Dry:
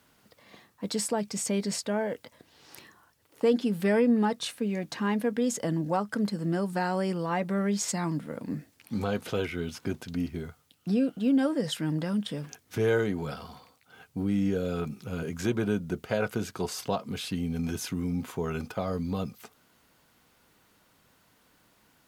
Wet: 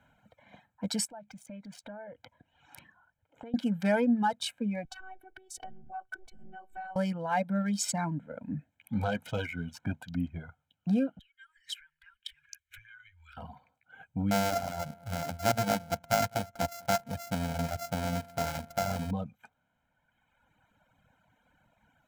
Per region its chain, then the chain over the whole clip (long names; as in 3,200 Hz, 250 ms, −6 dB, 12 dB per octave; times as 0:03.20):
0:01.05–0:03.54: downward compressor, threshold −40 dBFS + highs frequency-modulated by the lows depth 0.17 ms
0:04.85–0:06.96: low-shelf EQ 320 Hz +3 dB + downward compressor 3 to 1, threshold −36 dBFS + phases set to zero 378 Hz
0:11.19–0:13.37: downward compressor 8 to 1, threshold −33 dBFS + inverse Chebyshev band-stop filter 170–660 Hz, stop band 60 dB
0:14.31–0:19.11: samples sorted by size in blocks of 64 samples + single-tap delay 203 ms −16 dB
whole clip: adaptive Wiener filter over 9 samples; reverb reduction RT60 1.8 s; comb filter 1.3 ms, depth 88%; level −1.5 dB